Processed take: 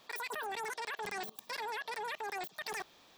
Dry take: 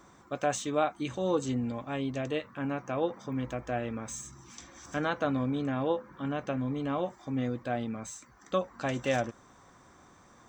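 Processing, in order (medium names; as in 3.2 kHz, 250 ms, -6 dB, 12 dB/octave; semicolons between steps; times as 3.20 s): level held to a coarse grid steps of 23 dB; wide varispeed 3.3×; trim +7 dB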